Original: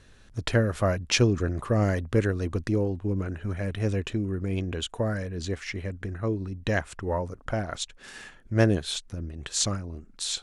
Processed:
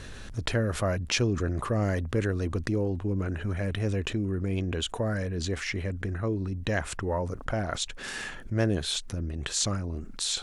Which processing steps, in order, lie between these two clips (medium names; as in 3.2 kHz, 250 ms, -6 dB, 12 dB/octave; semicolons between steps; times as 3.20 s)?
level flattener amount 50%; trim -6 dB